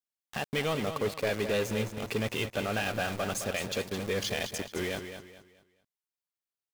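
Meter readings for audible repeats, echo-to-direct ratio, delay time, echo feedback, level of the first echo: 3, −8.5 dB, 214 ms, 33%, −9.0 dB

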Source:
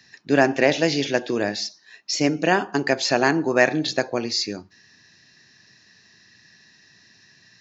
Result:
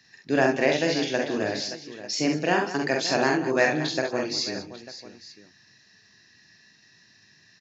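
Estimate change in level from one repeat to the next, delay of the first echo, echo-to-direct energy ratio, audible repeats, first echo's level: repeats not evenly spaced, 46 ms, −1.5 dB, 4, −4.0 dB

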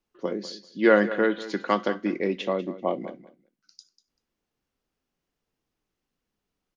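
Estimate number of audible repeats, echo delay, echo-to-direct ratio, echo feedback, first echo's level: 2, 194 ms, −15.5 dB, 16%, −15.5 dB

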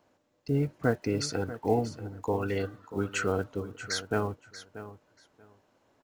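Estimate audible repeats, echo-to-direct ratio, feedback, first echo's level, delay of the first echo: 2, −14.0 dB, 17%, −14.0 dB, 635 ms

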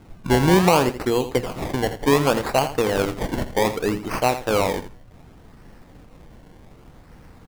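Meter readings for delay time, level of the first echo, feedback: 83 ms, −12.0 dB, 16%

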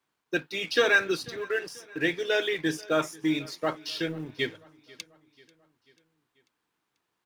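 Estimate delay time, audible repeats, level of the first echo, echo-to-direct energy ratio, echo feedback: 490 ms, 3, −23.0 dB, −21.5 dB, 53%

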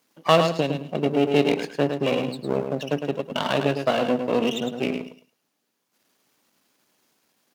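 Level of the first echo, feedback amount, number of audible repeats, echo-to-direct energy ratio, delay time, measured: −7.0 dB, 19%, 2, −7.0 dB, 107 ms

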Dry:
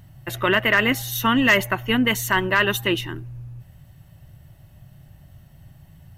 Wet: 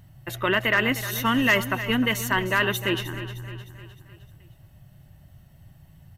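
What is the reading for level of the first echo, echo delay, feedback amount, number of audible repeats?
−13.0 dB, 307 ms, 50%, 4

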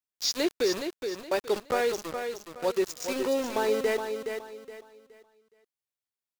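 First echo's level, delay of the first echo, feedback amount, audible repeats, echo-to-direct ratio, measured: −7.0 dB, 419 ms, 30%, 3, −6.5 dB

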